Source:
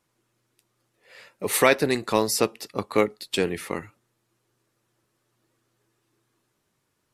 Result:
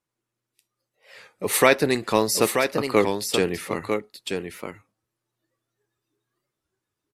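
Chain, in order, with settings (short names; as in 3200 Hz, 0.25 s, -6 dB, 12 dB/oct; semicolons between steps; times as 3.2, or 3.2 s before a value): spectral noise reduction 13 dB; on a send: echo 0.933 s -6 dB; on the sum: record warp 33 1/3 rpm, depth 160 cents; gain +1.5 dB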